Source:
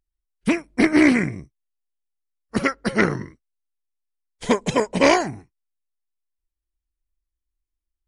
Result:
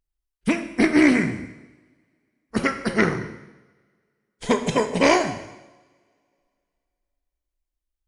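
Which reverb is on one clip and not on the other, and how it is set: two-slope reverb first 0.95 s, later 2.6 s, from -26 dB, DRR 7 dB; trim -1.5 dB

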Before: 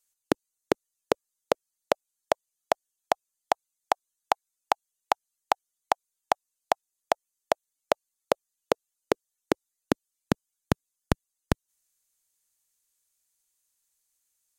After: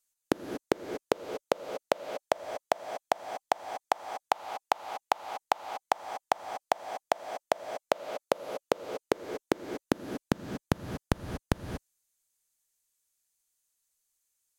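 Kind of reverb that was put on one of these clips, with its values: gated-style reverb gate 260 ms rising, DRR 7 dB; trim -3 dB

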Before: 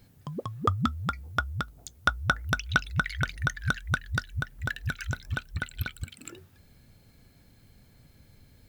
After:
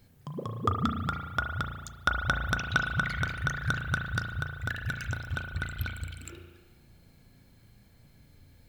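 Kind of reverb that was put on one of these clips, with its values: spring tank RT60 1.3 s, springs 35 ms, chirp 40 ms, DRR 3 dB; trim -2.5 dB

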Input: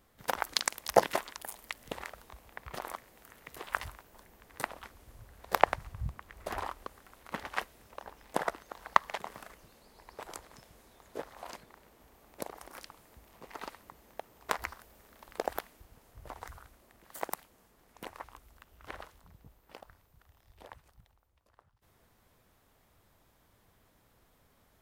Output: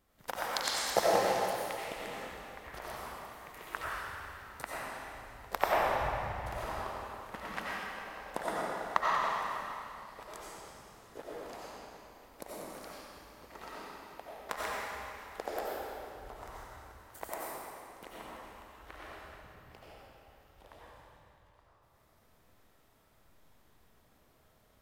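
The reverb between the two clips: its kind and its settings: algorithmic reverb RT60 2.7 s, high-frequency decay 0.9×, pre-delay 50 ms, DRR -7 dB; trim -7 dB

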